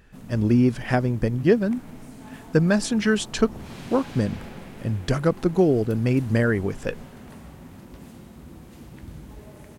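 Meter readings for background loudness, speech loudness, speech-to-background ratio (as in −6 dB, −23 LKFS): −42.5 LKFS, −23.0 LKFS, 19.5 dB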